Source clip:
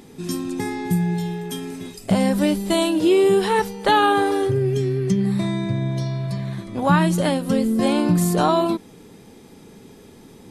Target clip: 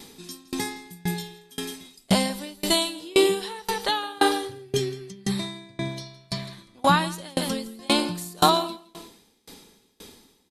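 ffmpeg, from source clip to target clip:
ffmpeg -i in.wav -filter_complex "[0:a]equalizer=frequency=125:width_type=o:width=1:gain=-9,equalizer=frequency=1000:width_type=o:width=1:gain=5,equalizer=frequency=2000:width_type=o:width=1:gain=3,equalizer=frequency=4000:width_type=o:width=1:gain=10,crystalizer=i=2.5:c=0,lowshelf=frequency=360:gain=5,asplit=2[link_01][link_02];[link_02]aecho=0:1:165|330|495:0.299|0.0687|0.0158[link_03];[link_01][link_03]amix=inputs=2:normalize=0,aeval=exprs='val(0)*pow(10,-30*if(lt(mod(1.9*n/s,1),2*abs(1.9)/1000),1-mod(1.9*n/s,1)/(2*abs(1.9)/1000),(mod(1.9*n/s,1)-2*abs(1.9)/1000)/(1-2*abs(1.9)/1000))/20)':channel_layout=same,volume=-2dB" out.wav

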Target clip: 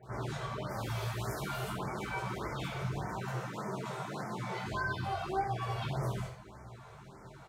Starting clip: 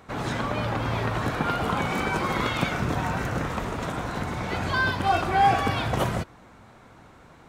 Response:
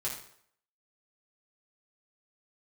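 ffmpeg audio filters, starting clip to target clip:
-filter_complex "[0:a]asettb=1/sr,asplit=3[link_01][link_02][link_03];[link_01]atrim=end=0.664[link_04];[link_02]atrim=start=0.66:end=1.65,asetpts=PTS-STARTPTS,afade=type=in:duration=0.004:curve=qsin,afade=type=out:start_time=0.986:duration=0.004:curve=qsin,aemphasis=mode=production:type=75kf[link_05];[link_03]atrim=start=1.646[link_06];[link_04][link_05]acrossfade=duration=0.004:curve1=hsin:curve2=qsin[link_07];[link_07][link_06]acrossfade=duration=0.004:curve1=qsin:curve2=hsin,asettb=1/sr,asplit=3[link_08][link_09][link_10];[link_08]atrim=end=3.114[link_11];[link_09]atrim=start=3.11:end=4.66,asetpts=PTS-STARTPTS,afade=type=in:duration=0.004:curve=qsin,afade=type=out:start_time=1.546:duration=0.004:curve=qsin,highpass=frequency=140:width=0.5412,highpass=frequency=140:width=1.3066[link_12];[link_10]atrim=start=4.656[link_13];[link_11][link_12]acrossfade=duration=0.004:curve1=hsin:curve2=qsin[link_14];[link_14][link_13]acrossfade=duration=0.004:curve1=qsin:curve2=hsin,acompressor=threshold=-37dB:ratio=3,flanger=delay=16.5:depth=6.3:speed=0.9,acrossover=split=1900[link_15][link_16];[link_16]adelay=30[link_17];[link_15][link_17]amix=inputs=2:normalize=0[link_18];[1:a]atrim=start_sample=2205[link_19];[link_18][link_19]afir=irnorm=-1:irlink=0,afftfilt=real='re*(1-between(b*sr/1024,230*pow(3400/230,0.5+0.5*sin(2*PI*1.7*pts/sr))/1.41,230*pow(3400/230,0.5+0.5*sin(2*PI*1.7*pts/sr))*1.41))':imag='im*(1-between(b*sr/1024,230*pow(3400/230,0.5+0.5*sin(2*PI*1.7*pts/sr))/1.41,230*pow(3400/230,0.5+0.5*sin(2*PI*1.7*pts/sr))*1.41))':win_size=1024:overlap=0.75"

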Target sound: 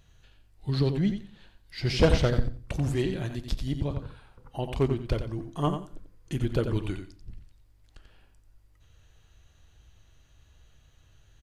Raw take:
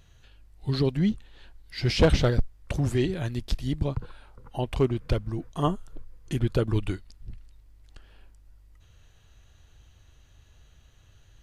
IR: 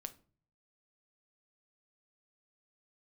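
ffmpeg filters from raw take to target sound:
-filter_complex "[0:a]aeval=exprs='0.251*(cos(1*acos(clip(val(0)/0.251,-1,1)))-cos(1*PI/2))+0.0126*(cos(3*acos(clip(val(0)/0.251,-1,1)))-cos(3*PI/2))':channel_layout=same,aecho=1:1:89|178|267:0.398|0.0677|0.0115,asplit=2[link_01][link_02];[1:a]atrim=start_sample=2205[link_03];[link_02][link_03]afir=irnorm=-1:irlink=0,volume=4dB[link_04];[link_01][link_04]amix=inputs=2:normalize=0,volume=-7.5dB"

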